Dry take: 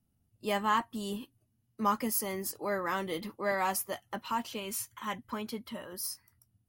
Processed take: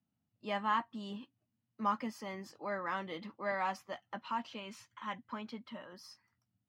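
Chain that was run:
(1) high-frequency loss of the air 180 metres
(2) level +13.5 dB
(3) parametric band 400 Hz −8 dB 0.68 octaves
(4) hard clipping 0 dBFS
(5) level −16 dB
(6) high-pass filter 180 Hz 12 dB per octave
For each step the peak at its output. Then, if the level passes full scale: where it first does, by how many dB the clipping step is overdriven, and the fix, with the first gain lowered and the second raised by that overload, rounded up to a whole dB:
−18.0, −4.5, −5.0, −5.0, −21.0, −21.0 dBFS
no step passes full scale

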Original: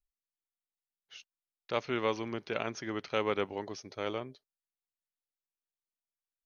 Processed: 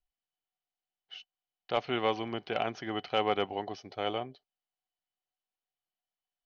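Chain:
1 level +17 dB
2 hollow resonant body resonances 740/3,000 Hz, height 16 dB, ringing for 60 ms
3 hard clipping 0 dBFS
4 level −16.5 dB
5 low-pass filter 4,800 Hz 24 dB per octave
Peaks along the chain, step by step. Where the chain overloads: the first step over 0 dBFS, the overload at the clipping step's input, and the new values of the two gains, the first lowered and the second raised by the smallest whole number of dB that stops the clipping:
+2.5, +4.0, 0.0, −16.5, −15.5 dBFS
step 1, 4.0 dB
step 1 +13 dB, step 4 −12.5 dB

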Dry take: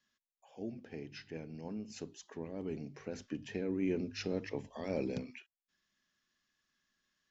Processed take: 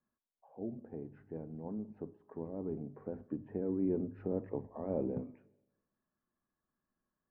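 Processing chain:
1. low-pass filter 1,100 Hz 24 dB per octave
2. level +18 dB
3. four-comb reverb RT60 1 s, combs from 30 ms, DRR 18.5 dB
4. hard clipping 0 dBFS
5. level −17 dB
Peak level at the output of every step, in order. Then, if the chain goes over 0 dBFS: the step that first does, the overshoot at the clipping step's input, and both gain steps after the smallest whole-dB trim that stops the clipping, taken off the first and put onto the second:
−23.5, −5.5, −5.5, −5.5, −22.5 dBFS
no step passes full scale

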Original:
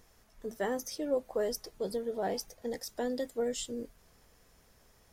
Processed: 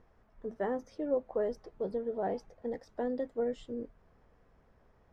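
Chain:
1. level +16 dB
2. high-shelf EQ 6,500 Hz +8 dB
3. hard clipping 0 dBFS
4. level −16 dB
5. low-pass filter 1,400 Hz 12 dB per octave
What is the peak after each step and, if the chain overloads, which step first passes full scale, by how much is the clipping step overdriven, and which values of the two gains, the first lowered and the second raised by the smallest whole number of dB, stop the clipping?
−4.5, −2.5, −2.5, −18.5, −20.5 dBFS
no step passes full scale

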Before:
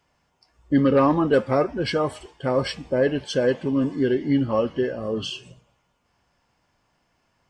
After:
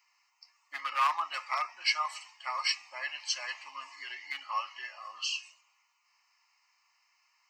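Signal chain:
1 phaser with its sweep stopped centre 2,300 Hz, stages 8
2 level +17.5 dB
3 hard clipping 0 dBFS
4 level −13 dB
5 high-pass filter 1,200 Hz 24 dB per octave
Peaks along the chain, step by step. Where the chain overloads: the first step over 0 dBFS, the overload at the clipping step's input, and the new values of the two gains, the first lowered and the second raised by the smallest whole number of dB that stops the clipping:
−11.0, +6.5, 0.0, −13.0, −13.5 dBFS
step 2, 6.5 dB
step 2 +10.5 dB, step 4 −6 dB

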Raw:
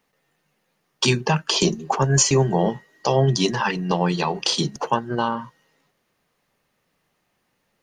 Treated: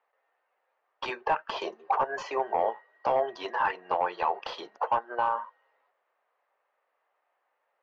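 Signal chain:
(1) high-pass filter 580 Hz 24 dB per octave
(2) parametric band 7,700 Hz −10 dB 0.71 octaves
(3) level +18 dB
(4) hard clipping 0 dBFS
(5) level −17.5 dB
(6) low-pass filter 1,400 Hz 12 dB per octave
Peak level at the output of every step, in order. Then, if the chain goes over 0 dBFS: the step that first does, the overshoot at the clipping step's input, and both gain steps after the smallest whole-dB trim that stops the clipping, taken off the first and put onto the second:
−5.5, −8.5, +9.5, 0.0, −17.5, −17.0 dBFS
step 3, 9.5 dB
step 3 +8 dB, step 5 −7.5 dB

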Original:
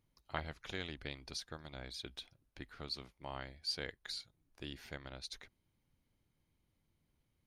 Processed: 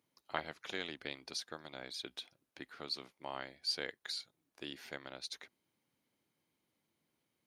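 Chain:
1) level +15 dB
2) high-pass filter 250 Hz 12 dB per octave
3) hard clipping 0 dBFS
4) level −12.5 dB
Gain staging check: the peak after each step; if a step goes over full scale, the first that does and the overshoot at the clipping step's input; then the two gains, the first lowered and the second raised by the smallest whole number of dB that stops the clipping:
−5.0, −4.5, −4.5, −17.0 dBFS
no step passes full scale

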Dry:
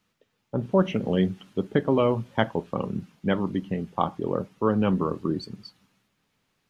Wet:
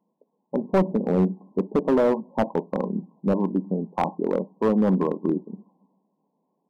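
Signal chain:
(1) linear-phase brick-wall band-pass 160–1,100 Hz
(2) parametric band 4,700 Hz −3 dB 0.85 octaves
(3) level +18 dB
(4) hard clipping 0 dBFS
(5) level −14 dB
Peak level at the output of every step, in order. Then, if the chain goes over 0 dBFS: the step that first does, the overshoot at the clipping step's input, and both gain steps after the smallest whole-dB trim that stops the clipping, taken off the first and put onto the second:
−8.5, −8.5, +9.5, 0.0, −14.0 dBFS
step 3, 9.5 dB
step 3 +8 dB, step 5 −4 dB

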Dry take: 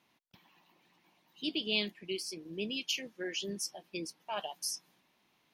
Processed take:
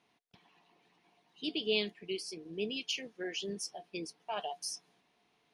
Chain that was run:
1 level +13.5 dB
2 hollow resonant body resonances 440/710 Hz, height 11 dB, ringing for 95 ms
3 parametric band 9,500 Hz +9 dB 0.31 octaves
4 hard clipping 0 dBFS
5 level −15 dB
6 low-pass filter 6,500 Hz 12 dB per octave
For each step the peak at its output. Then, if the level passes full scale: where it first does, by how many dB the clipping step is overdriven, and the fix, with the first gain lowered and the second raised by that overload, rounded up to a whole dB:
−2.5, −1.5, −1.5, −1.5, −16.5, −16.5 dBFS
no step passes full scale

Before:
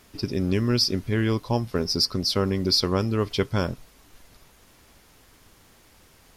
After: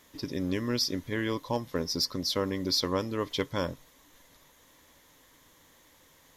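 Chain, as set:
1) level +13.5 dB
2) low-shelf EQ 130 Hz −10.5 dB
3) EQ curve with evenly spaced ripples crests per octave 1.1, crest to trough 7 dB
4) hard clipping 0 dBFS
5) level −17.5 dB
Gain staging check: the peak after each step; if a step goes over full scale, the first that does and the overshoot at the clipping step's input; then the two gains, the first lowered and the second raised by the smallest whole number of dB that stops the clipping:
+4.5, +3.5, +3.0, 0.0, −17.5 dBFS
step 1, 3.0 dB
step 1 +10.5 dB, step 5 −14.5 dB

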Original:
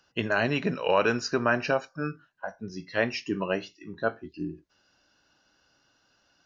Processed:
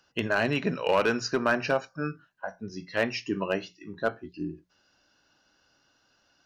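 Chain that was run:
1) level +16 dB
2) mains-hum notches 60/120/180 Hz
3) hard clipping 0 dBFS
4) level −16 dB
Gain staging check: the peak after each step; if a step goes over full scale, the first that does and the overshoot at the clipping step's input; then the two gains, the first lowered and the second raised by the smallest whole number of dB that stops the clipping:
+5.0, +5.0, 0.0, −16.0 dBFS
step 1, 5.0 dB
step 1 +11 dB, step 4 −11 dB

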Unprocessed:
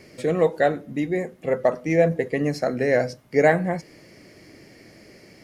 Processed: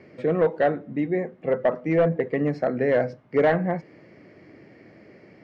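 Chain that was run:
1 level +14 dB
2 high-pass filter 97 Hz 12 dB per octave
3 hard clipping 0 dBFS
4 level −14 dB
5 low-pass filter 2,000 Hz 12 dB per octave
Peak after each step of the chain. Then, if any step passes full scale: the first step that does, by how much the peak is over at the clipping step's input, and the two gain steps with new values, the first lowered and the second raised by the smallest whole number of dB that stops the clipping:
+8.5, +8.5, 0.0, −14.0, −13.5 dBFS
step 1, 8.5 dB
step 1 +5 dB, step 4 −5 dB

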